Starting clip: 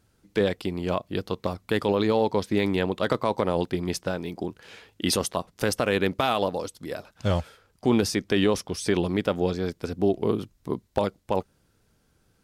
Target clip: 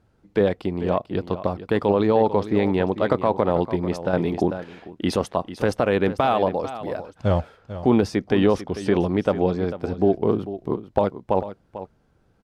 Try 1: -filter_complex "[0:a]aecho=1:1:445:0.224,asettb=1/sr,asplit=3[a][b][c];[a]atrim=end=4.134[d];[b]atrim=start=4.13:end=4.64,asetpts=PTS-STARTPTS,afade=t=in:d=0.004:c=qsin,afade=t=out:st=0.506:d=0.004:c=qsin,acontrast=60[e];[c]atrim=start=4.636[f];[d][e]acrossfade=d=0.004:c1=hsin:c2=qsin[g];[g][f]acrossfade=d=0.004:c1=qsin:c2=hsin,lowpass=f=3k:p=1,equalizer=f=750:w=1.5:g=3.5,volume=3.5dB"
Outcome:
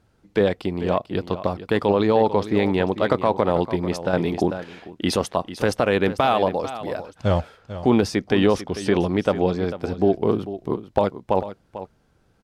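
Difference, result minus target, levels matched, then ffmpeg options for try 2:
4000 Hz band +4.5 dB
-filter_complex "[0:a]aecho=1:1:445:0.224,asettb=1/sr,asplit=3[a][b][c];[a]atrim=end=4.134[d];[b]atrim=start=4.13:end=4.64,asetpts=PTS-STARTPTS,afade=t=in:d=0.004:c=qsin,afade=t=out:st=0.506:d=0.004:c=qsin,acontrast=60[e];[c]atrim=start=4.636[f];[d][e]acrossfade=d=0.004:c1=hsin:c2=qsin[g];[g][f]acrossfade=d=0.004:c1=qsin:c2=hsin,lowpass=f=1.4k:p=1,equalizer=f=750:w=1.5:g=3.5,volume=3.5dB"

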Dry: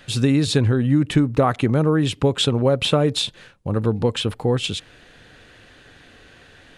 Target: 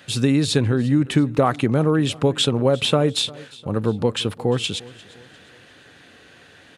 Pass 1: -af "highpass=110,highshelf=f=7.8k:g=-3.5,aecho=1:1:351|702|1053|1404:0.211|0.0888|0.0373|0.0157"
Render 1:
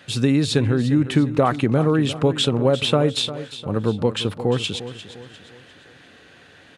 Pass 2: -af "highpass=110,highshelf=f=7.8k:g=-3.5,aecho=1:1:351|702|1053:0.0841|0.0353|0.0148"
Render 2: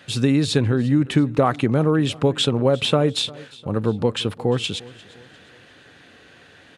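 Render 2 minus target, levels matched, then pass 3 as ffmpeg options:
8000 Hz band -3.0 dB
-af "highpass=110,highshelf=f=7.8k:g=3,aecho=1:1:351|702|1053:0.0841|0.0353|0.0148"

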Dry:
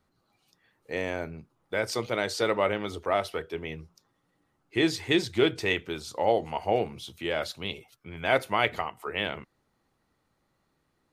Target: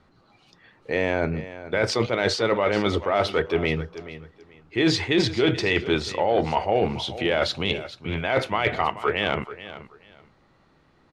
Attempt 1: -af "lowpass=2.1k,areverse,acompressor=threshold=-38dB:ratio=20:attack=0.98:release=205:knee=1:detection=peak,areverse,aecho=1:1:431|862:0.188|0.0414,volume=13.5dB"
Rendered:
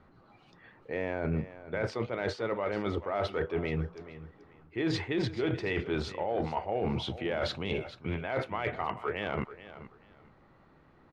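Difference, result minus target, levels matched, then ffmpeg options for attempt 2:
compressor: peak gain reduction +9.5 dB; 4000 Hz band -4.0 dB
-af "lowpass=4.2k,areverse,acompressor=threshold=-27dB:ratio=20:attack=0.98:release=205:knee=1:detection=peak,areverse,aecho=1:1:431|862:0.188|0.0414,volume=13.5dB"

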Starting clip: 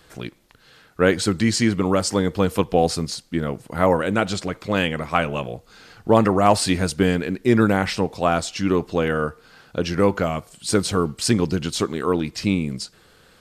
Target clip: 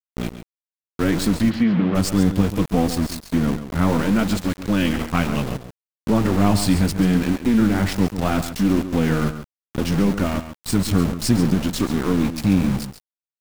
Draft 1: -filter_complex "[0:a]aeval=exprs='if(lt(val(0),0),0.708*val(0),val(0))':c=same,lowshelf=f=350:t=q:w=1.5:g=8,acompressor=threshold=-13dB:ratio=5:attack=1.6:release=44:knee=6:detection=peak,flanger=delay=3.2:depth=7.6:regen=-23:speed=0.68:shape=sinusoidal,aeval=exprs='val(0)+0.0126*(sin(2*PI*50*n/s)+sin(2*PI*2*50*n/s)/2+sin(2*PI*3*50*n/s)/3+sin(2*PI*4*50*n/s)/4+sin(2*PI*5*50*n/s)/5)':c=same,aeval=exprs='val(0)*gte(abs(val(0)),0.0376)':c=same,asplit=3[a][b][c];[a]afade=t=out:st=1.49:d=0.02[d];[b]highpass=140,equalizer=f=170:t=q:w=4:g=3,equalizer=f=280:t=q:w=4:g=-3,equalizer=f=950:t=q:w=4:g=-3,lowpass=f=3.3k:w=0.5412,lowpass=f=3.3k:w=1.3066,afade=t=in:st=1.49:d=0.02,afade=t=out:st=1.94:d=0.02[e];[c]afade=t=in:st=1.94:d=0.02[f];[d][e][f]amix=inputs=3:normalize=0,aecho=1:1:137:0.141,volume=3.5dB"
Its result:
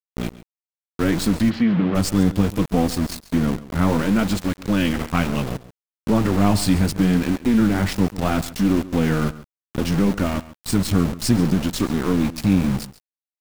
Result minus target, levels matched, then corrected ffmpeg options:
echo-to-direct -6 dB
-filter_complex "[0:a]aeval=exprs='if(lt(val(0),0),0.708*val(0),val(0))':c=same,lowshelf=f=350:t=q:w=1.5:g=8,acompressor=threshold=-13dB:ratio=5:attack=1.6:release=44:knee=6:detection=peak,flanger=delay=3.2:depth=7.6:regen=-23:speed=0.68:shape=sinusoidal,aeval=exprs='val(0)+0.0126*(sin(2*PI*50*n/s)+sin(2*PI*2*50*n/s)/2+sin(2*PI*3*50*n/s)/3+sin(2*PI*4*50*n/s)/4+sin(2*PI*5*50*n/s)/5)':c=same,aeval=exprs='val(0)*gte(abs(val(0)),0.0376)':c=same,asplit=3[a][b][c];[a]afade=t=out:st=1.49:d=0.02[d];[b]highpass=140,equalizer=f=170:t=q:w=4:g=3,equalizer=f=280:t=q:w=4:g=-3,equalizer=f=950:t=q:w=4:g=-3,lowpass=f=3.3k:w=0.5412,lowpass=f=3.3k:w=1.3066,afade=t=in:st=1.49:d=0.02,afade=t=out:st=1.94:d=0.02[e];[c]afade=t=in:st=1.94:d=0.02[f];[d][e][f]amix=inputs=3:normalize=0,aecho=1:1:137:0.282,volume=3.5dB"

